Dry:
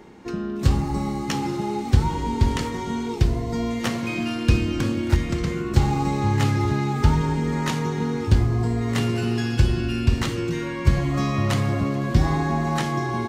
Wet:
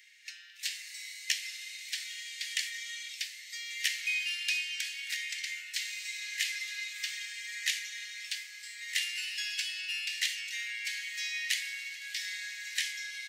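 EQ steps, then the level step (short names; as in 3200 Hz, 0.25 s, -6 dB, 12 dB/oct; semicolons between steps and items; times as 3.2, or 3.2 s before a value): steep high-pass 1800 Hz 72 dB/oct; +1.5 dB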